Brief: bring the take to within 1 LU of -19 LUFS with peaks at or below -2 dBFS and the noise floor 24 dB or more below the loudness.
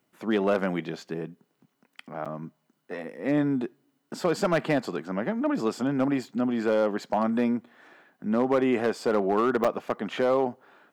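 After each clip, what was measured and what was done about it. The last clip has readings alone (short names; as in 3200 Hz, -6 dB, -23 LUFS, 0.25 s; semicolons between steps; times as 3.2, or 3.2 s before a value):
clipped 0.5%; flat tops at -16.0 dBFS; dropouts 2; longest dropout 6.5 ms; loudness -27.0 LUFS; peak -16.0 dBFS; loudness target -19.0 LUFS
-> clip repair -16 dBFS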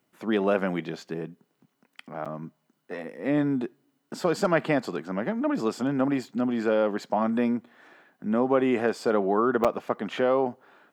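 clipped 0.0%; dropouts 2; longest dropout 6.5 ms
-> interpolate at 2.25/9.64, 6.5 ms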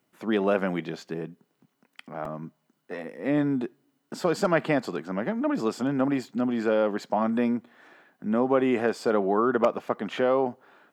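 dropouts 0; loudness -26.5 LUFS; peak -7.0 dBFS; loudness target -19.0 LUFS
-> gain +7.5 dB; limiter -2 dBFS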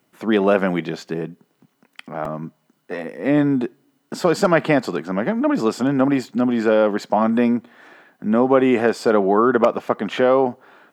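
loudness -19.0 LUFS; peak -2.0 dBFS; noise floor -67 dBFS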